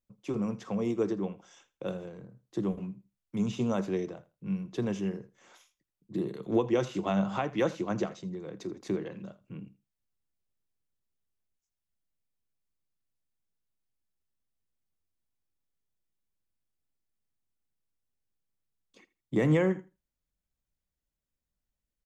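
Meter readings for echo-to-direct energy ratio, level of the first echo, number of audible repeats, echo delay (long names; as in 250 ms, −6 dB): −19.5 dB, −19.5 dB, 2, 81 ms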